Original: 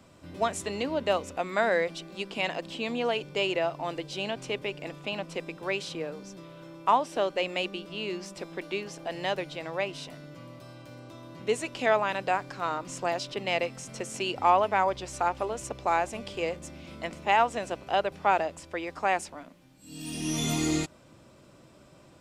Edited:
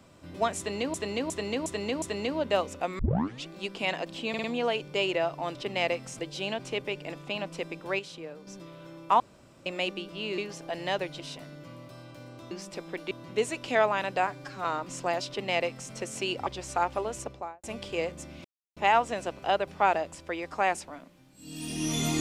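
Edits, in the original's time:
0.58–0.94 loop, 5 plays
1.55 tape start 0.48 s
2.85 stutter 0.05 s, 4 plays
5.76–6.24 gain -6.5 dB
6.97–7.43 room tone
8.15–8.75 move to 11.22
9.57–9.91 cut
12.38–12.63 stretch 1.5×
13.26–13.9 copy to 3.96
14.45–14.91 cut
15.6–16.08 studio fade out
16.89–17.21 mute

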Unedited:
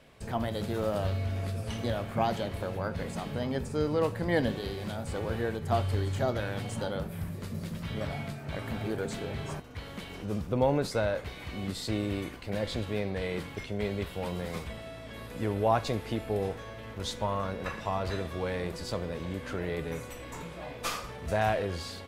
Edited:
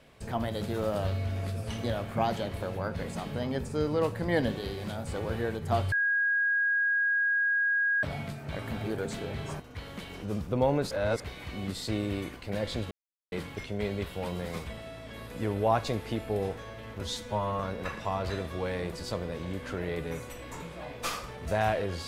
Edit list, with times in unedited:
5.92–8.03 bleep 1640 Hz -23.5 dBFS
10.91–11.2 reverse
12.91–13.32 mute
17.01–17.4 stretch 1.5×

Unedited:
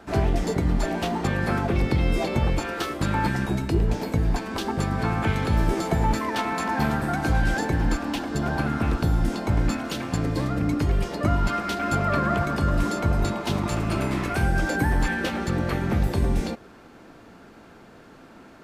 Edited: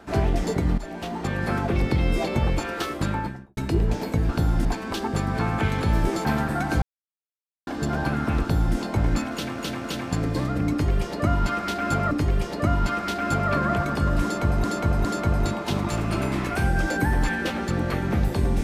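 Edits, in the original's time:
0.78–1.88 fade in equal-power, from -12.5 dB
2.96–3.57 studio fade out
5.89–6.78 cut
7.35–8.2 mute
8.94–9.3 copy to 4.29
9.85–10.11 loop, 3 plays
10.72–12.12 loop, 2 plays
12.84–13.25 loop, 3 plays

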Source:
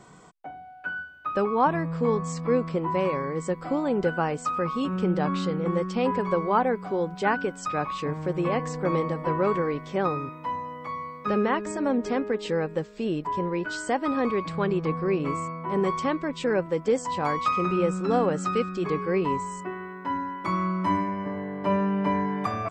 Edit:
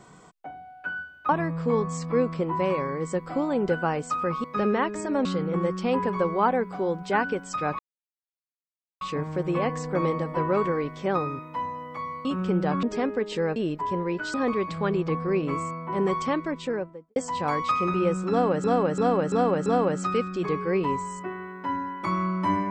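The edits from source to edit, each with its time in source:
1.29–1.64 cut
4.79–5.37 swap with 11.15–11.96
7.91 insert silence 1.22 s
12.69–13.02 cut
13.8–14.11 cut
16.22–16.93 studio fade out
18.07–18.41 loop, 5 plays

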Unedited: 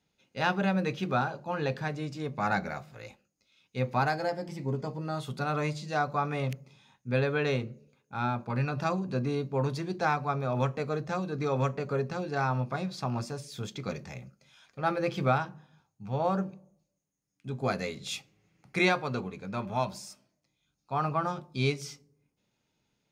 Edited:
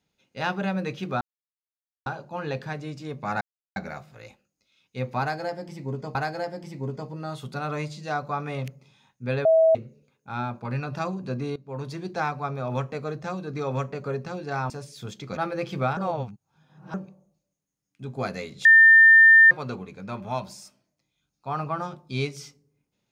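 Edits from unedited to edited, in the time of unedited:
1.21 insert silence 0.85 s
2.56 insert silence 0.35 s
4–4.95 loop, 2 plays
7.3–7.6 bleep 647 Hz -14 dBFS
9.41–9.84 fade in, from -18.5 dB
12.55–13.26 cut
13.93–14.82 cut
15.42–16.39 reverse
18.1–18.96 bleep 1800 Hz -9.5 dBFS

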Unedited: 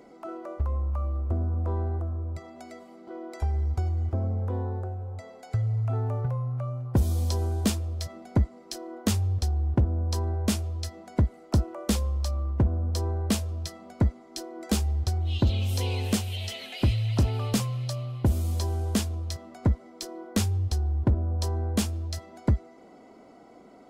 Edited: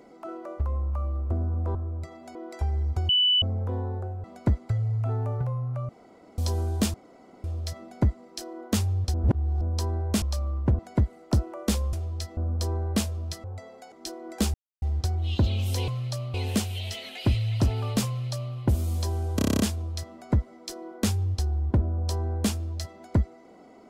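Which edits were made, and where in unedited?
1.75–2.08 cut
2.68–3.16 cut
3.9–4.23 bleep 2980 Hz -18 dBFS
5.05–5.53 swap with 13.78–14.23
6.73–7.22 room tone
7.78 insert room tone 0.50 s
9.48–9.95 reverse
10.56–11 swap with 12.14–12.71
14.85 insert silence 0.28 s
17.65–18.11 copy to 15.91
18.93 stutter 0.03 s, 9 plays

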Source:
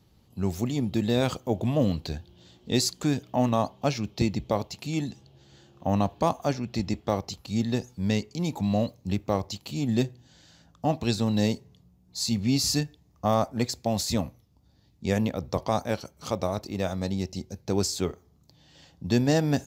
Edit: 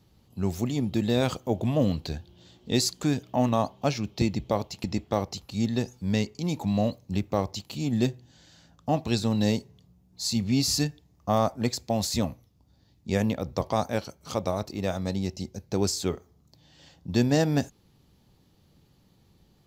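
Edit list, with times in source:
4.84–6.8 cut

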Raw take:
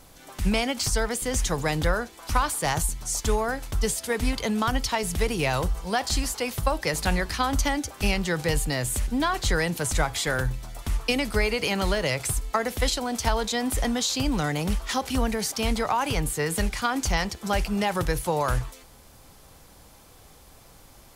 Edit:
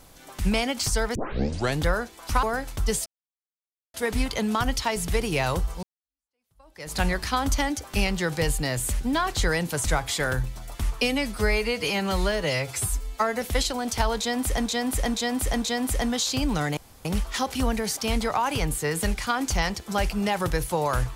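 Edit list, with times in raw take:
1.15 tape start 0.64 s
2.43–3.38 cut
4.01 insert silence 0.88 s
5.9–7.04 fade in exponential
11.09–12.69 stretch 1.5×
13.45–13.93 loop, 4 plays
14.6 insert room tone 0.28 s

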